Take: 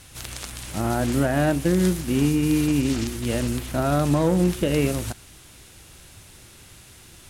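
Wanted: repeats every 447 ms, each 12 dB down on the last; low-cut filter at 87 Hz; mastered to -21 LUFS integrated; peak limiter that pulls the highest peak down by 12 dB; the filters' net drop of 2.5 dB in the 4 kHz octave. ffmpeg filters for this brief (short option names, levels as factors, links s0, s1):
-af "highpass=87,equalizer=f=4000:t=o:g=-3.5,alimiter=limit=0.1:level=0:latency=1,aecho=1:1:447|894|1341:0.251|0.0628|0.0157,volume=2.66"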